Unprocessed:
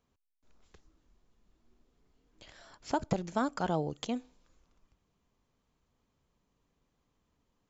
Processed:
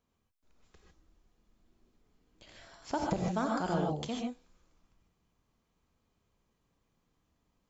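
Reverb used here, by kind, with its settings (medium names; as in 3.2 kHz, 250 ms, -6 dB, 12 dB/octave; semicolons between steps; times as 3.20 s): gated-style reverb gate 170 ms rising, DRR -1 dB; trim -3 dB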